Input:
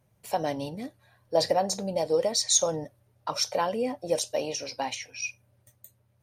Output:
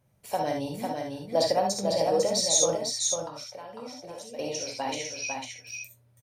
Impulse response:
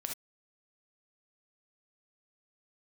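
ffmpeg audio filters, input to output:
-filter_complex "[0:a]asettb=1/sr,asplit=3[a][b][c];[a]atrim=end=2.734[d];[b]atrim=start=2.73:end=4.39,asetpts=PTS-STARTPTS,afade=t=in:d=0.004:c=qsin,afade=t=out:st=1.656:d=0.004:c=qsin,acompressor=threshold=-40dB:ratio=5[e];[c]atrim=start=4.386[f];[d][e]acrossfade=d=0.004:c1=hsin:c2=qsin[g];[g][f]acrossfade=d=0.004:c1=qsin:c2=hsin,aecho=1:1:500:0.596[h];[1:a]atrim=start_sample=2205[i];[h][i]afir=irnorm=-1:irlink=0"

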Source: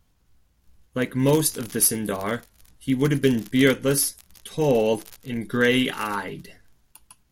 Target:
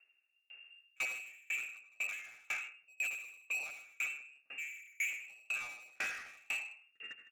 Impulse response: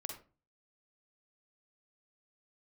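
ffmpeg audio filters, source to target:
-filter_complex "[0:a]dynaudnorm=f=290:g=3:m=16dB[a];[1:a]atrim=start_sample=2205,asetrate=26901,aresample=44100[b];[a][b]afir=irnorm=-1:irlink=0,areverse,acompressor=threshold=-23dB:ratio=6,areverse,asplit=2[c][d];[d]adelay=158,lowpass=f=1.9k:p=1,volume=-4dB,asplit=2[e][f];[f]adelay=158,lowpass=f=1.9k:p=1,volume=0.15,asplit=2[g][h];[h]adelay=158,lowpass=f=1.9k:p=1,volume=0.15[i];[c][e][g][i]amix=inputs=4:normalize=0,lowpass=f=2.4k:t=q:w=0.5098,lowpass=f=2.4k:t=q:w=0.6013,lowpass=f=2.4k:t=q:w=0.9,lowpass=f=2.4k:t=q:w=2.563,afreqshift=-2800,asplit=2[j][k];[k]asoftclip=type=hard:threshold=-29dB,volume=-5.5dB[l];[j][l]amix=inputs=2:normalize=0,highpass=240,asoftclip=type=tanh:threshold=-24.5dB,equalizer=f=1k:t=o:w=0.45:g=-9.5,aeval=exprs='val(0)*pow(10,-34*if(lt(mod(2*n/s,1),2*abs(2)/1000),1-mod(2*n/s,1)/(2*abs(2)/1000),(mod(2*n/s,1)-2*abs(2)/1000)/(1-2*abs(2)/1000))/20)':c=same,volume=-5dB"

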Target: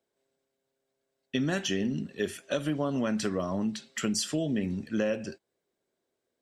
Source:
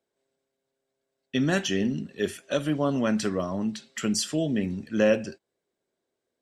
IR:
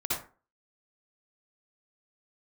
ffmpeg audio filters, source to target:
-af "acompressor=threshold=-25dB:ratio=6"

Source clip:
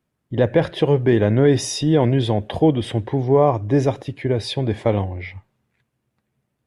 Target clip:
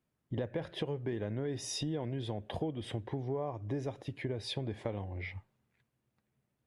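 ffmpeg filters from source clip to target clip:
-af "acompressor=threshold=-26dB:ratio=6,volume=-7.5dB"

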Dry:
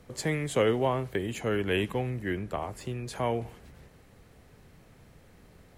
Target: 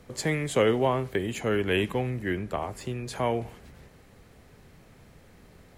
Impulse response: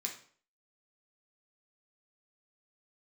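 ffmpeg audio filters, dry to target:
-filter_complex "[0:a]asplit=2[a][b];[1:a]atrim=start_sample=2205,lowpass=8.6k[c];[b][c]afir=irnorm=-1:irlink=0,volume=-17.5dB[d];[a][d]amix=inputs=2:normalize=0,volume=2dB"

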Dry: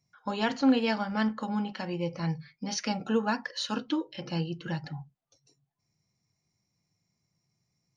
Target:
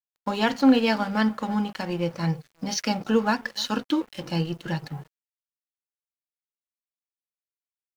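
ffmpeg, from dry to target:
-filter_complex "[0:a]asplit=2[a][b];[b]adelay=309,volume=-22dB,highshelf=f=4k:g=-6.95[c];[a][c]amix=inputs=2:normalize=0,aeval=exprs='sgn(val(0))*max(abs(val(0))-0.00422,0)':c=same,acrusher=bits=10:mix=0:aa=0.000001,volume=6dB"

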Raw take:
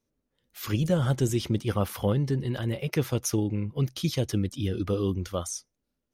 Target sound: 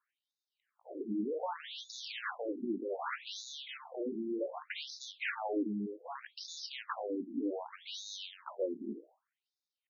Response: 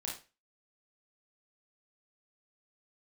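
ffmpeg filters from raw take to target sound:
-filter_complex "[0:a]equalizer=f=1.3k:w=0.33:g=-10.5,acrusher=bits=8:mode=log:mix=0:aa=0.000001,atempo=0.62,acrusher=samples=13:mix=1:aa=0.000001,asoftclip=type=hard:threshold=-32.5dB,asplit=2[a][b];[1:a]atrim=start_sample=2205[c];[b][c]afir=irnorm=-1:irlink=0,volume=-13.5dB[d];[a][d]amix=inputs=2:normalize=0,afftfilt=real='re*between(b*sr/1024,270*pow(5000/270,0.5+0.5*sin(2*PI*0.65*pts/sr))/1.41,270*pow(5000/270,0.5+0.5*sin(2*PI*0.65*pts/sr))*1.41)':imag='im*between(b*sr/1024,270*pow(5000/270,0.5+0.5*sin(2*PI*0.65*pts/sr))/1.41,270*pow(5000/270,0.5+0.5*sin(2*PI*0.65*pts/sr))*1.41)':win_size=1024:overlap=0.75,volume=8.5dB"

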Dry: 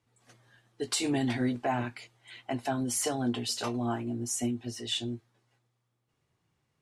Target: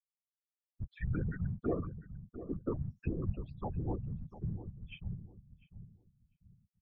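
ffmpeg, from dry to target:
-filter_complex "[0:a]afftfilt=real='re*gte(hypot(re,im),0.0631)':imag='im*gte(hypot(re,im),0.0631)':win_size=1024:overlap=0.75,highpass=f=160:p=1,afftfilt=real='hypot(re,im)*cos(2*PI*random(0))':imag='hypot(re,im)*sin(2*PI*random(1))':win_size=512:overlap=0.75,asplit=2[a][b];[b]adelay=698,lowpass=f=920:p=1,volume=-10.5dB,asplit=2[c][d];[d]adelay=698,lowpass=f=920:p=1,volume=0.31,asplit=2[e][f];[f]adelay=698,lowpass=f=920:p=1,volume=0.31[g];[a][c][e][g]amix=inputs=4:normalize=0,highpass=f=220:t=q:w=0.5412,highpass=f=220:t=q:w=1.307,lowpass=f=2.4k:t=q:w=0.5176,lowpass=f=2.4k:t=q:w=0.7071,lowpass=f=2.4k:t=q:w=1.932,afreqshift=-390,volume=4dB"

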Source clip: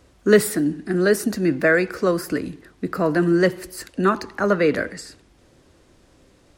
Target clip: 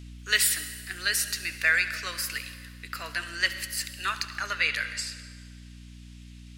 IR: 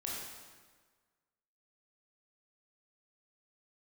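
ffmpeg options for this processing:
-filter_complex "[0:a]highpass=f=2.7k:t=q:w=1.8,aeval=exprs='val(0)+0.00562*(sin(2*PI*60*n/s)+sin(2*PI*2*60*n/s)/2+sin(2*PI*3*60*n/s)/3+sin(2*PI*4*60*n/s)/4+sin(2*PI*5*60*n/s)/5)':c=same,asplit=2[a][b];[1:a]atrim=start_sample=2205,asetrate=36162,aresample=44100,adelay=71[c];[b][c]afir=irnorm=-1:irlink=0,volume=-14dB[d];[a][d]amix=inputs=2:normalize=0,volume=3dB"

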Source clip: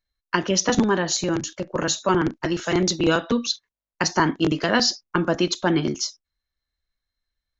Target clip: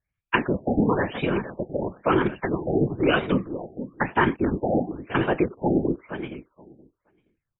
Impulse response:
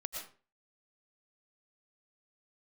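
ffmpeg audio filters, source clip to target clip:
-filter_complex "[0:a]equalizer=f=2.4k:w=5.9:g=13,asplit=2[a][b];[b]adelay=466.5,volume=-14dB,highshelf=f=4k:g=-10.5[c];[a][c]amix=inputs=2:normalize=0,afftfilt=real='hypot(re,im)*cos(2*PI*random(0))':imag='hypot(re,im)*sin(2*PI*random(1))':win_size=512:overlap=0.75,asplit=2[d][e];[e]aecho=0:1:474|948:0.15|0.0299[f];[d][f]amix=inputs=2:normalize=0,afftfilt=real='re*lt(b*sr/1024,820*pow(3900/820,0.5+0.5*sin(2*PI*1*pts/sr)))':imag='im*lt(b*sr/1024,820*pow(3900/820,0.5+0.5*sin(2*PI*1*pts/sr)))':win_size=1024:overlap=0.75,volume=5dB"

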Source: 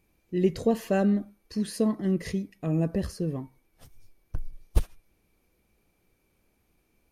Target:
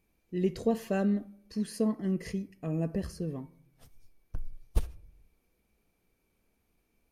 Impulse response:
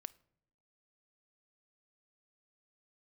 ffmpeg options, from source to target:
-filter_complex "[0:a]asettb=1/sr,asplit=3[a][b][c];[a]atrim=end=1.644[d];[b]atrim=start=1.64:end=3.22,asetpts=PTS-STARTPTS,afade=t=in:d=0.004:c=qsin,afade=t=out:st=1.576:d=0.004:c=qsin,bandreject=f=3.7k:w=6[e];[c]atrim=start=3.216[f];[d][e]acrossfade=d=0.004:c1=hsin:c2=qsin[g];[g][f]acrossfade=d=0.004:c1=qsin:c2=hsin[h];[1:a]atrim=start_sample=2205[i];[h][i]afir=irnorm=-1:irlink=0"

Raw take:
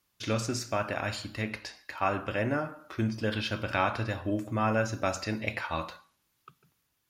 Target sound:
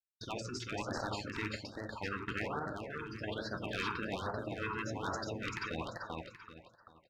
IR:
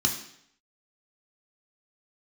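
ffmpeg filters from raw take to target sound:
-filter_complex "[0:a]aeval=exprs='if(lt(val(0),0),0.447*val(0),val(0))':c=same,afftdn=nr=16:nf=-45,acrossover=split=6200[a][b];[a]tremolo=f=12:d=0.73[c];[b]alimiter=level_in=20dB:limit=-24dB:level=0:latency=1:release=230,volume=-20dB[d];[c][d]amix=inputs=2:normalize=0,adynamicequalizer=threshold=0.00398:dfrequency=540:dqfactor=2.4:tfrequency=540:tqfactor=2.4:attack=5:release=100:ratio=0.375:range=2.5:mode=boostabove:tftype=bell,highpass=54,afftfilt=real='re*lt(hypot(re,im),0.0708)':imag='im*lt(hypot(re,im),0.0708)':win_size=1024:overlap=0.75,aeval=exprs='0.0398*(abs(mod(val(0)/0.0398+3,4)-2)-1)':c=same,agate=range=-38dB:threshold=-57dB:ratio=16:detection=peak,highshelf=f=5.1k:g=-8.5,asplit=2[e][f];[f]aecho=0:1:389|778|1167|1556:0.668|0.207|0.0642|0.0199[g];[e][g]amix=inputs=2:normalize=0,afftfilt=real='re*(1-between(b*sr/1024,610*pow(2800/610,0.5+0.5*sin(2*PI*1.2*pts/sr))/1.41,610*pow(2800/610,0.5+0.5*sin(2*PI*1.2*pts/sr))*1.41))':imag='im*(1-between(b*sr/1024,610*pow(2800/610,0.5+0.5*sin(2*PI*1.2*pts/sr))/1.41,610*pow(2800/610,0.5+0.5*sin(2*PI*1.2*pts/sr))*1.41))':win_size=1024:overlap=0.75,volume=3.5dB"

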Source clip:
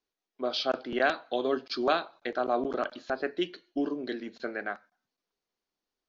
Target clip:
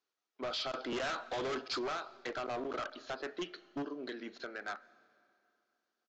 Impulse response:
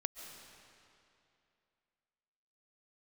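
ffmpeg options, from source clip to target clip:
-filter_complex "[0:a]highpass=f=350:p=1,equalizer=f=1.3k:t=o:w=0.32:g=7.5,asettb=1/sr,asplit=3[a][b][c];[a]atrim=end=3.824[d];[b]atrim=start=3.82:end=4.68,asetpts=PTS-STARTPTS,afade=t=in:d=0.004:c=qsin,afade=t=out:st=0.856:d=0.004:c=qsin,acompressor=threshold=-37dB:ratio=12[e];[c]atrim=start=4.676[f];[d][e]acrossfade=d=0.004:c1=hsin:c2=qsin[g];[g][f]acrossfade=d=0.004:c1=qsin:c2=hsin,alimiter=limit=-21dB:level=0:latency=1:release=369,asettb=1/sr,asplit=3[h][i][j];[h]atrim=end=0.724[k];[i]atrim=start=0.72:end=1.79,asetpts=PTS-STARTPTS,afade=t=in:d=0.004:c=qsin,afade=t=out:st=1.066:d=0.004:c=qsin,acontrast=73[l];[j]atrim=start=1.786[m];[k][l]acrossfade=d=0.004:c1=hsin:c2=qsin[n];[n][m]acrossfade=d=0.004:c1=qsin:c2=hsin,volume=34dB,asoftclip=hard,volume=-34dB,aresample=16000,aresample=44100,asplit=2[o][p];[1:a]atrim=start_sample=2205[q];[p][q]afir=irnorm=-1:irlink=0,volume=-14dB[r];[o][r]amix=inputs=2:normalize=0,volume=-1.5dB"

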